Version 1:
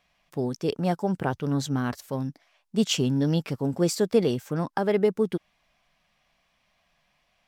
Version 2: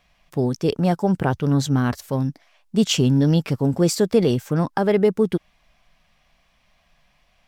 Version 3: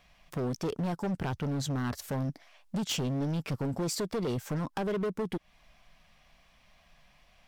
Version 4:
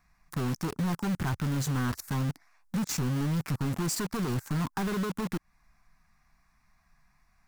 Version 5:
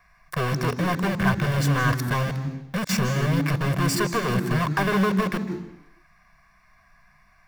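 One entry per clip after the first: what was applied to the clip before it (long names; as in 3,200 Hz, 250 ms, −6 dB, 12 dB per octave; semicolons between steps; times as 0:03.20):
low-shelf EQ 90 Hz +11 dB; in parallel at −1.5 dB: brickwall limiter −15.5 dBFS, peak gain reduction 7.5 dB
downward compressor 4 to 1, threshold −26 dBFS, peak gain reduction 12.5 dB; hard clipping −28 dBFS, distortion −9 dB
phaser with its sweep stopped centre 1,300 Hz, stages 4; in parallel at −4 dB: log-companded quantiser 2 bits; on the sum: level −2.5 dB
convolution reverb RT60 0.80 s, pre-delay 152 ms, DRR 12.5 dB; level +3.5 dB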